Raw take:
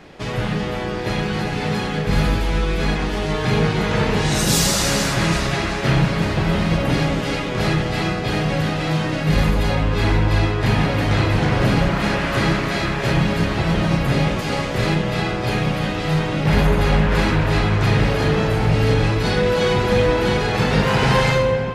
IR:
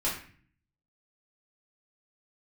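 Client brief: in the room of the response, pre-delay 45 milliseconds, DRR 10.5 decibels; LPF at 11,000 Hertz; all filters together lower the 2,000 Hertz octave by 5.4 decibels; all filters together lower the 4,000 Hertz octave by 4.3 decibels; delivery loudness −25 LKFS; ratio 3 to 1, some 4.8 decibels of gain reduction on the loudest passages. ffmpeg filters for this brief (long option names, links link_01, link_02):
-filter_complex "[0:a]lowpass=11000,equalizer=frequency=2000:width_type=o:gain=-6,equalizer=frequency=4000:width_type=o:gain=-3.5,acompressor=threshold=-19dB:ratio=3,asplit=2[link_01][link_02];[1:a]atrim=start_sample=2205,adelay=45[link_03];[link_02][link_03]afir=irnorm=-1:irlink=0,volume=-18dB[link_04];[link_01][link_04]amix=inputs=2:normalize=0,volume=-2dB"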